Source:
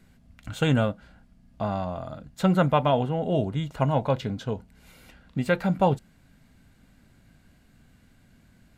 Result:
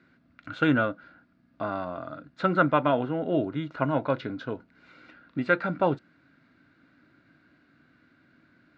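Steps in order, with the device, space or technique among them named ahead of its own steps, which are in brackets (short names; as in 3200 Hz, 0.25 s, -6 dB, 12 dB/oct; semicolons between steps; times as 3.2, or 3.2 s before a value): kitchen radio (speaker cabinet 190–4100 Hz, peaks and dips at 200 Hz -8 dB, 310 Hz +9 dB, 450 Hz -4 dB, 810 Hz -7 dB, 1400 Hz +9 dB, 3100 Hz -7 dB)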